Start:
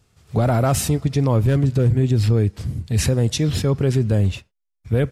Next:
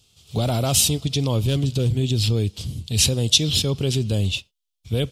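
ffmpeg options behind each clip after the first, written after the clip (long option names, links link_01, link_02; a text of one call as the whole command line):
ffmpeg -i in.wav -af "highshelf=frequency=2400:width_type=q:width=3:gain=10,volume=-4dB" out.wav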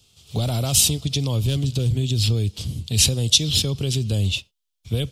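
ffmpeg -i in.wav -filter_complex "[0:a]acrossover=split=150|3000[link_01][link_02][link_03];[link_02]acompressor=threshold=-28dB:ratio=6[link_04];[link_01][link_04][link_03]amix=inputs=3:normalize=0,volume=1.5dB" out.wav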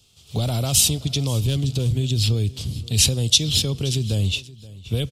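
ffmpeg -i in.wav -af "aecho=1:1:525|1050:0.106|0.0212" out.wav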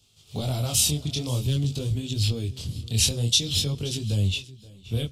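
ffmpeg -i in.wav -af "flanger=delay=19:depth=7.7:speed=0.5,volume=-1.5dB" out.wav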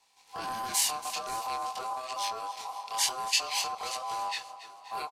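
ffmpeg -i in.wav -filter_complex "[0:a]acrossover=split=2600[link_01][link_02];[link_01]asoftclip=type=tanh:threshold=-26dB[link_03];[link_03][link_02]amix=inputs=2:normalize=0,aeval=exprs='val(0)*sin(2*PI*900*n/s)':channel_layout=same,aecho=1:1:281|562|843|1124:0.178|0.08|0.036|0.0162,volume=-2.5dB" out.wav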